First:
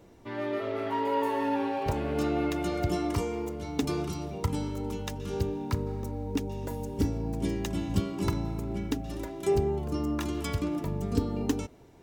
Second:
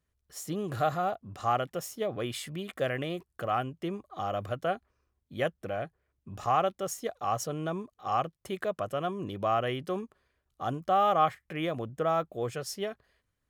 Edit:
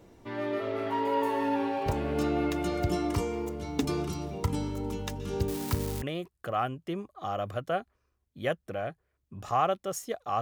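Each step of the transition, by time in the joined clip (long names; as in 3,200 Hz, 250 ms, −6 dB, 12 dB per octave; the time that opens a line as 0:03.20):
first
0:05.48–0:06.02: spike at every zero crossing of −25 dBFS
0:06.02: continue with second from 0:02.97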